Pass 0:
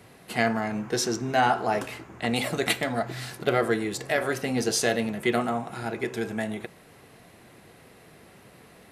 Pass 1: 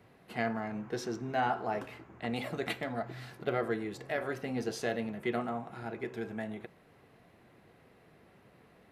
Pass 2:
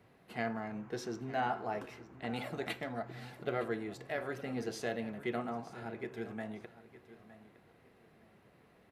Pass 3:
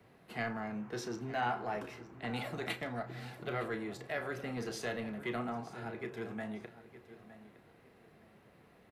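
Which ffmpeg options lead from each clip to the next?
-af "equalizer=f=8900:w=0.48:g=-12.5,volume=0.398"
-af "aecho=1:1:913|1826:0.158|0.0396,volume=0.668"
-filter_complex "[0:a]acrossover=split=160|850|1800[s0][s1][s2][s3];[s1]asoftclip=type=tanh:threshold=0.0133[s4];[s0][s4][s2][s3]amix=inputs=4:normalize=0,asplit=2[s5][s6];[s6]adelay=33,volume=0.282[s7];[s5][s7]amix=inputs=2:normalize=0,volume=1.19"

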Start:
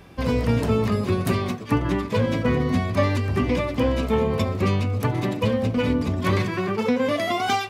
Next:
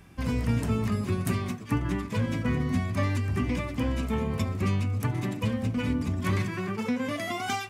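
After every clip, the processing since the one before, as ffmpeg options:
-af "equalizer=f=500:t=o:w=1:g=-9,equalizer=f=1000:t=o:w=1:g=-3,equalizer=f=4000:t=o:w=1:g=-6,equalizer=f=8000:t=o:w=1:g=4,volume=0.668"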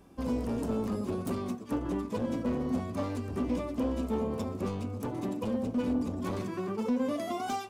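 -af "volume=16.8,asoftclip=hard,volume=0.0596,equalizer=f=125:t=o:w=1:g=-9,equalizer=f=250:t=o:w=1:g=7,equalizer=f=500:t=o:w=1:g=7,equalizer=f=1000:t=o:w=1:g=4,equalizer=f=2000:t=o:w=1:g=-9,volume=0.531"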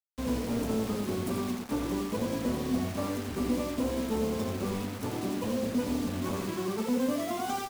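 -filter_complex "[0:a]acrusher=bits=6:mix=0:aa=0.000001,asplit=2[s0][s1];[s1]aecho=0:1:86:0.562[s2];[s0][s2]amix=inputs=2:normalize=0"

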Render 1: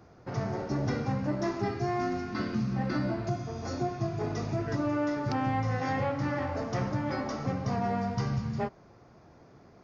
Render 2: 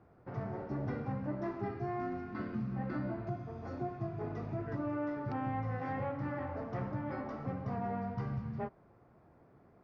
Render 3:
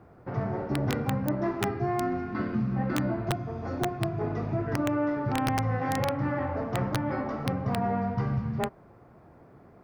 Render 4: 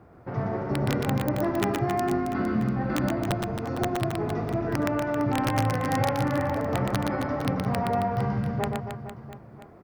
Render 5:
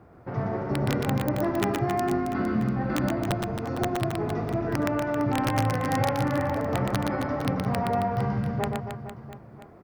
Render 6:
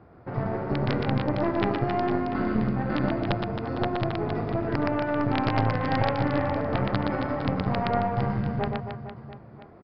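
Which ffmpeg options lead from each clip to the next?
-af "lowpass=2000,volume=0.447"
-af "aeval=exprs='(mod(22.4*val(0)+1,2)-1)/22.4':c=same,volume=2.82"
-af "aecho=1:1:120|270|457.5|691.9|984.8:0.631|0.398|0.251|0.158|0.1,volume=1.12"
-af anull
-af "aeval=exprs='0.237*(cos(1*acos(clip(val(0)/0.237,-1,1)))-cos(1*PI/2))+0.106*(cos(2*acos(clip(val(0)/0.237,-1,1)))-cos(2*PI/2))':c=same,aresample=11025,aresample=44100"

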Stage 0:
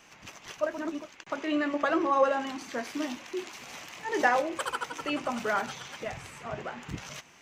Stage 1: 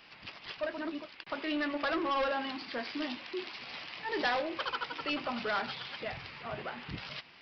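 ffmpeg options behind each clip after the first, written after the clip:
-af "aresample=11025,asoftclip=type=tanh:threshold=0.0562,aresample=44100,highshelf=f=2800:g=10.5,volume=0.708"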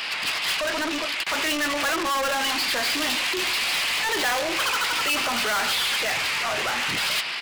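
-filter_complex "[0:a]aecho=1:1:142:0.0841,asplit=2[s0][s1];[s1]highpass=f=720:p=1,volume=39.8,asoftclip=type=tanh:threshold=0.0944[s2];[s0][s2]amix=inputs=2:normalize=0,lowpass=f=1600:p=1,volume=0.501,crystalizer=i=8:c=0,volume=0.841"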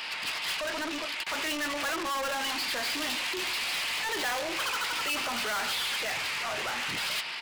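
-af "aeval=exprs='val(0)+0.00631*sin(2*PI*910*n/s)':c=same,volume=0.447"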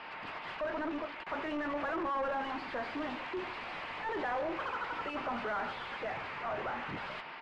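-af "lowpass=1200"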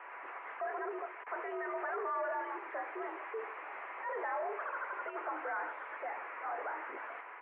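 -af "highpass=f=280:t=q:w=0.5412,highpass=f=280:t=q:w=1.307,lowpass=f=2100:t=q:w=0.5176,lowpass=f=2100:t=q:w=0.7071,lowpass=f=2100:t=q:w=1.932,afreqshift=77,volume=0.794"

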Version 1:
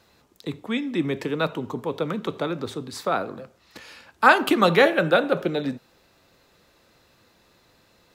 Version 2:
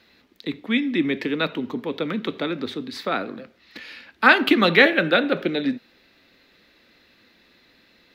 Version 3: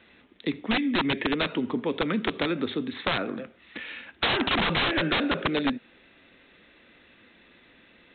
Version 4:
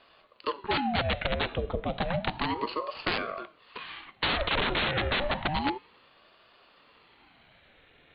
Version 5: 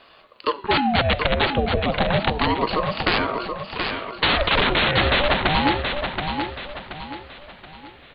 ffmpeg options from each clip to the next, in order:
-af "equalizer=f=125:t=o:w=1:g=-6,equalizer=f=250:t=o:w=1:g=9,equalizer=f=1000:t=o:w=1:g=-4,equalizer=f=2000:t=o:w=1:g=10,equalizer=f=4000:t=o:w=1:g=8,equalizer=f=8000:t=o:w=1:g=-10,volume=0.75"
-af "aresample=8000,aeval=exprs='(mod(5.96*val(0)+1,2)-1)/5.96':c=same,aresample=44100,acompressor=threshold=0.0631:ratio=6,volume=1.26"
-af "bandreject=f=379.8:t=h:w=4,bandreject=f=759.6:t=h:w=4,bandreject=f=1139.4:t=h:w=4,bandreject=f=1519.2:t=h:w=4,bandreject=f=1899:t=h:w=4,bandreject=f=2278.8:t=h:w=4,bandreject=f=2658.6:t=h:w=4,bandreject=f=3038.4:t=h:w=4,bandreject=f=3418.2:t=h:w=4,bandreject=f=3798:t=h:w=4,bandreject=f=4177.8:t=h:w=4,bandreject=f=4557.6:t=h:w=4,bandreject=f=4937.4:t=h:w=4,bandreject=f=5317.2:t=h:w=4,bandreject=f=5697:t=h:w=4,bandreject=f=6076.8:t=h:w=4,bandreject=f=6456.6:t=h:w=4,bandreject=f=6836.4:t=h:w=4,bandreject=f=7216.2:t=h:w=4,bandreject=f=7596:t=h:w=4,bandreject=f=7975.8:t=h:w=4,bandreject=f=8355.6:t=h:w=4,bandreject=f=8735.4:t=h:w=4,bandreject=f=9115.2:t=h:w=4,bandreject=f=9495:t=h:w=4,bandreject=f=9874.8:t=h:w=4,bandreject=f=10254.6:t=h:w=4,bandreject=f=10634.4:t=h:w=4,bandreject=f=11014.2:t=h:w=4,bandreject=f=11394:t=h:w=4,bandreject=f=11773.8:t=h:w=4,bandreject=f=12153.6:t=h:w=4,bandreject=f=12533.4:t=h:w=4,bandreject=f=12913.2:t=h:w=4,bandreject=f=13293:t=h:w=4,bandreject=f=13672.8:t=h:w=4,bandreject=f=14052.6:t=h:w=4,aeval=exprs='val(0)*sin(2*PI*550*n/s+550*0.65/0.31*sin(2*PI*0.31*n/s))':c=same"
-af "aecho=1:1:727|1454|2181|2908|3635:0.501|0.19|0.0724|0.0275|0.0105,volume=2.66"

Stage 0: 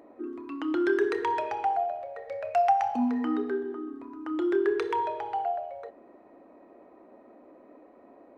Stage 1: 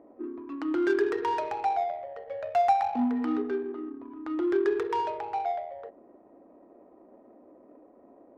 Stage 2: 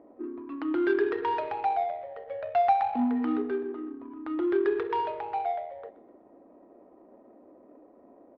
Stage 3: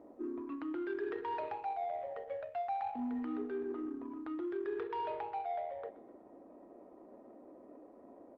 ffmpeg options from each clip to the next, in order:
-filter_complex "[0:a]acrossover=split=1800[s0][s1];[s1]aeval=exprs='0.0237*(abs(mod(val(0)/0.0237+3,4)-2)-1)':c=same[s2];[s0][s2]amix=inputs=2:normalize=0,adynamicsmooth=sensitivity=4:basefreq=1000"
-af "lowpass=f=3900:w=0.5412,lowpass=f=3900:w=1.3066,aecho=1:1:126|252|378|504:0.112|0.055|0.0269|0.0132"
-af "areverse,acompressor=threshold=0.0178:ratio=6,areverse,volume=0.891" -ar 48000 -c:a libopus -b:a 32k

